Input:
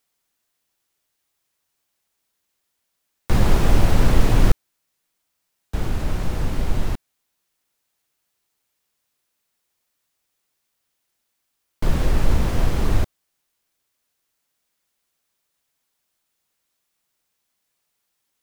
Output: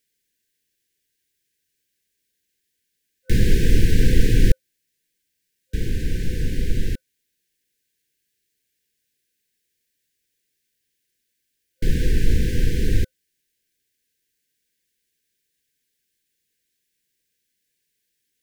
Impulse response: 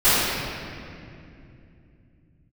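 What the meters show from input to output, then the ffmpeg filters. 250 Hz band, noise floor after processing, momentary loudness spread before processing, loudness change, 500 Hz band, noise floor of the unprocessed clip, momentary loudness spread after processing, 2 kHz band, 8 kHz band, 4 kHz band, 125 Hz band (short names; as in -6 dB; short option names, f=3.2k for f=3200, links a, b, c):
0.0 dB, -76 dBFS, 11 LU, -0.5 dB, -2.0 dB, -76 dBFS, 11 LU, -0.5 dB, 0.0 dB, 0.0 dB, 0.0 dB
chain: -af "afftfilt=real='re*(1-between(b*sr/4096,520,1500))':imag='im*(1-between(b*sr/4096,520,1500))':win_size=4096:overlap=0.75"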